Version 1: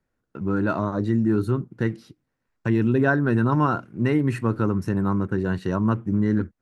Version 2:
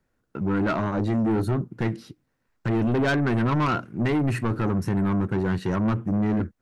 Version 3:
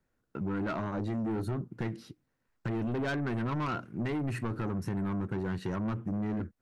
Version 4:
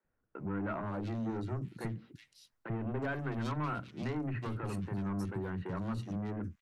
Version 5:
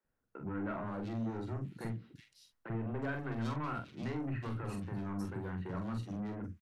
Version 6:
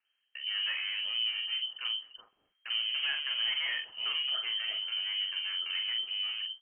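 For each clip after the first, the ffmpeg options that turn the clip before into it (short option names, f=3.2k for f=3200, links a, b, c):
-af "asoftclip=type=tanh:threshold=-23dB,volume=4dB"
-af "acompressor=threshold=-26dB:ratio=4,volume=-5dB"
-filter_complex "[0:a]acrossover=split=280|2700[a][b][c];[a]adelay=40[d];[c]adelay=370[e];[d][b][e]amix=inputs=3:normalize=0,volume=-2.5dB"
-filter_complex "[0:a]asplit=2[a][b];[b]adelay=44,volume=-6dB[c];[a][c]amix=inputs=2:normalize=0,volume=-3dB"
-af "lowpass=f=2.7k:t=q:w=0.5098,lowpass=f=2.7k:t=q:w=0.6013,lowpass=f=2.7k:t=q:w=0.9,lowpass=f=2.7k:t=q:w=2.563,afreqshift=-3200,volume=4.5dB"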